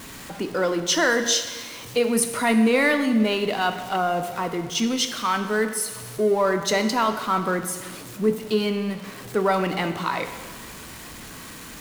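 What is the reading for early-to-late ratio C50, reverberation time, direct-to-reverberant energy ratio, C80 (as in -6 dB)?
9.0 dB, 1.5 s, 7.0 dB, 10.5 dB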